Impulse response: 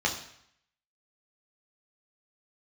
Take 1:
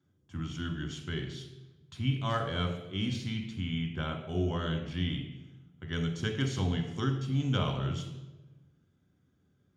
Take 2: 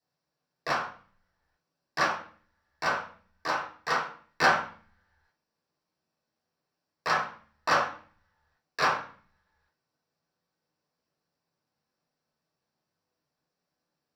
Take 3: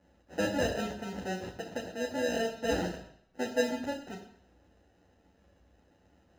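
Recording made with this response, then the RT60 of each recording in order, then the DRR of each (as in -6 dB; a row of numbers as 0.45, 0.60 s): 3; 1.1, 0.45, 0.70 s; 3.5, -7.0, -1.0 dB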